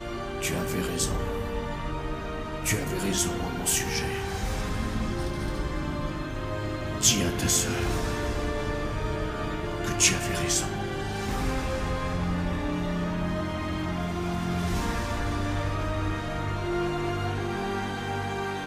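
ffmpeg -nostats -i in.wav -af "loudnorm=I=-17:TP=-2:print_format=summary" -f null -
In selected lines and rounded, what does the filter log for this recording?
Input Integrated:    -28.7 LUFS
Input True Peak:      -6.0 dBTP
Input LRA:             3.4 LU
Input Threshold:     -38.7 LUFS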